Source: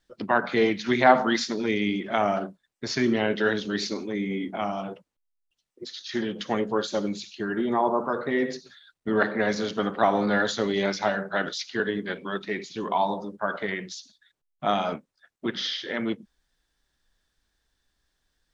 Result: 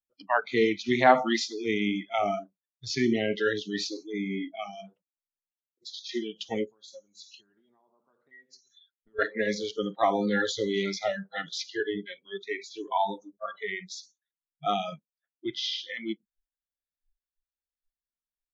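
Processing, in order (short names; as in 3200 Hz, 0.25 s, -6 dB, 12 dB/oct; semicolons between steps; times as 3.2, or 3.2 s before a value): 6.64–9.19 compressor 4:1, threshold -38 dBFS, peak gain reduction 16.5 dB; spectral noise reduction 29 dB; gain -1.5 dB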